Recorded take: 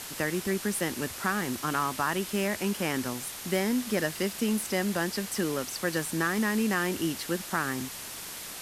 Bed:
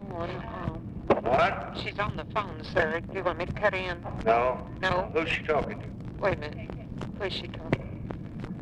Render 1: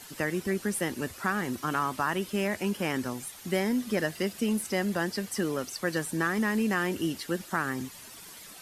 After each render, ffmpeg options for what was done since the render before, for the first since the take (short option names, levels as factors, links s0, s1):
-af "afftdn=nr=11:nf=-41"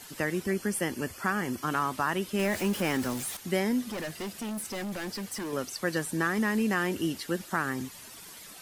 -filter_complex "[0:a]asettb=1/sr,asplit=3[s0][s1][s2];[s0]atrim=end=0.464[s3];[s1]atrim=start=0.46:end=1.63,asetpts=PTS-STARTPTS,afade=t=in:d=0.004:c=qsin,afade=t=out:st=1.166:d=0.004:c=qsin,asuperstop=centerf=3800:order=20:qfactor=7.3[s4];[s2]atrim=start=1.626[s5];[s3][s4]acrossfade=d=0.004:c1=hsin:c2=qsin[s6];[s6][s5]acrossfade=d=0.004:c1=qsin:c2=hsin,asettb=1/sr,asplit=3[s7][s8][s9];[s7]atrim=end=2.394[s10];[s8]atrim=start=2.39:end=3.37,asetpts=PTS-STARTPTS,afade=t=in:d=0.004:c=qsin,afade=t=out:st=0.976:d=0.004:c=qsin,aeval=exprs='val(0)+0.5*0.0178*sgn(val(0))':c=same[s11];[s9]atrim=start=3.366[s12];[s10][s11]acrossfade=d=0.004:c1=hsin:c2=qsin[s13];[s13][s12]acrossfade=d=0.004:c1=qsin:c2=hsin,asettb=1/sr,asplit=3[s14][s15][s16];[s14]atrim=end=3.894[s17];[s15]atrim=start=3.89:end=5.53,asetpts=PTS-STARTPTS,afade=t=in:d=0.004:c=qsin,afade=t=out:st=1.636:d=0.004:c=qsin,asoftclip=type=hard:threshold=0.0237[s18];[s16]atrim=start=5.526[s19];[s17][s18]acrossfade=d=0.004:c1=hsin:c2=qsin[s20];[s20][s19]acrossfade=d=0.004:c1=qsin:c2=hsin"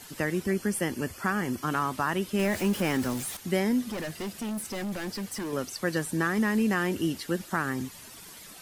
-af "lowshelf=f=270:g=4"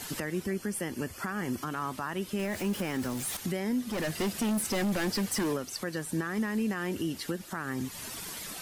-filter_complex "[0:a]asplit=2[s0][s1];[s1]acompressor=threshold=0.0158:ratio=8,volume=1.12[s2];[s0][s2]amix=inputs=2:normalize=0,alimiter=limit=0.075:level=0:latency=1:release=471"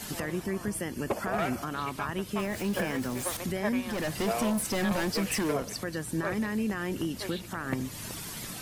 -filter_complex "[1:a]volume=0.376[s0];[0:a][s0]amix=inputs=2:normalize=0"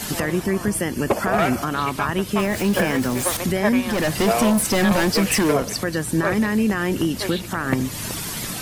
-af "volume=3.35"